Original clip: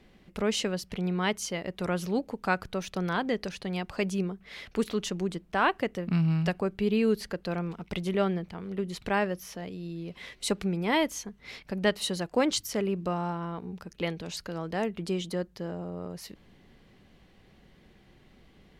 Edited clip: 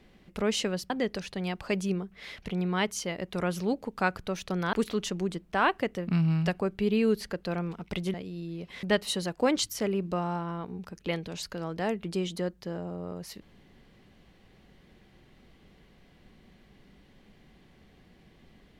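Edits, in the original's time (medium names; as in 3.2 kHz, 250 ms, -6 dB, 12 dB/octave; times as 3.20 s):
3.19–4.73 s: move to 0.90 s
8.14–9.61 s: delete
10.30–11.77 s: delete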